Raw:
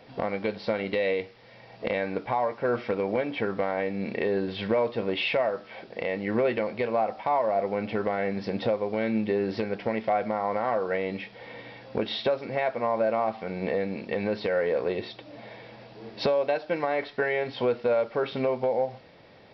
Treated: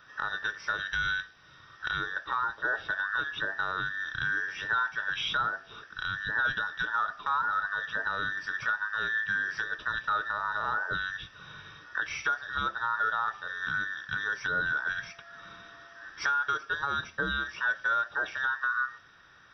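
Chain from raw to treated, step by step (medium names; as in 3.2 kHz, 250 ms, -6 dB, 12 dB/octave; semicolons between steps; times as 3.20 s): every band turned upside down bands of 2 kHz; 14.61–16.04 s: whistle 680 Hz -53 dBFS; trim -4 dB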